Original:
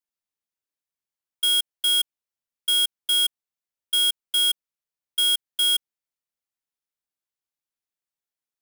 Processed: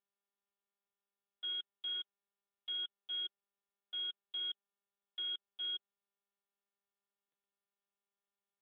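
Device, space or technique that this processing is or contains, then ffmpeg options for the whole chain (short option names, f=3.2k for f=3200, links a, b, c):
telephone: -filter_complex "[0:a]asettb=1/sr,asplit=3[a][b][c];[a]atrim=end=1.864[d];[b]atrim=start=1.86:end=2.76,asetpts=PTS-STARTPTS,afade=t=in:d=0.004:c=qsin,afade=t=out:st=0.896:d=0.004:c=qsin,lowpass=7.4k[e];[c]atrim=start=2.756[f];[d][e]acrossfade=d=0.004:c1=hsin:c2=qsin[g];[g][f]acrossfade=d=0.004:c1=qsin:c2=hsin,highpass=270,lowpass=3.4k,asoftclip=type=tanh:threshold=-26.5dB,volume=-8dB" -ar 8000 -c:a libopencore_amrnb -b:a 7400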